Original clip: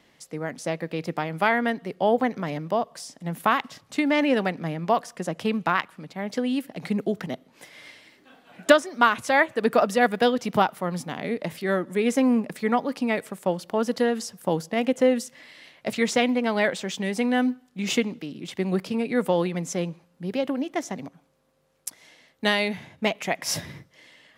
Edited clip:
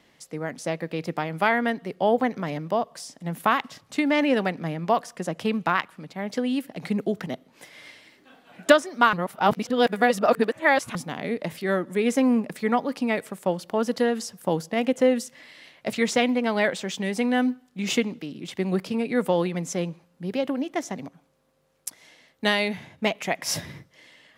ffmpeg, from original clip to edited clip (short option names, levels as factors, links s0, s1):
-filter_complex "[0:a]asplit=3[s0][s1][s2];[s0]atrim=end=9.132[s3];[s1]atrim=start=9.128:end=10.952,asetpts=PTS-STARTPTS,areverse[s4];[s2]atrim=start=10.948[s5];[s3][s4]acrossfade=d=0.004:c1=hsin:c2=hsin[s6];[s6][s5]acrossfade=d=0.004:c1=hsin:c2=hsin"